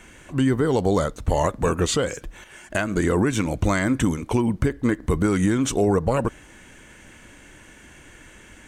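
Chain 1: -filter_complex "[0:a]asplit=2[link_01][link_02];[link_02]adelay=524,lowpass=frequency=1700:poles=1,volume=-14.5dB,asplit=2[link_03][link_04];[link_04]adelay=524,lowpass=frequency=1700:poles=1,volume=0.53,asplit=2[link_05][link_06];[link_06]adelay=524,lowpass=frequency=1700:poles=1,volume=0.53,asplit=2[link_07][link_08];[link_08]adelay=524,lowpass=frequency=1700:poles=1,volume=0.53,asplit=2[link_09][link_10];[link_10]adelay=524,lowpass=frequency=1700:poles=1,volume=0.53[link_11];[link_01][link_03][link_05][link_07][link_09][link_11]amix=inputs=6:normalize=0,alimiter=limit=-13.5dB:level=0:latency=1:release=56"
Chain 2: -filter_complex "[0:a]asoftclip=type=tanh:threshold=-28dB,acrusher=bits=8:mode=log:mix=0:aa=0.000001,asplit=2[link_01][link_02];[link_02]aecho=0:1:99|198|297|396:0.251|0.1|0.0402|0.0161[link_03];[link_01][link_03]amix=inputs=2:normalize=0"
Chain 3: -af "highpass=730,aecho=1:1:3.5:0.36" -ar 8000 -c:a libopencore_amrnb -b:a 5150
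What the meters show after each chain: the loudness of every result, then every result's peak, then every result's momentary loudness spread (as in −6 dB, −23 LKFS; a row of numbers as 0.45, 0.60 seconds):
−24.5, −31.5, −32.5 LKFS; −13.5, −25.0, −12.5 dBFS; 17, 16, 9 LU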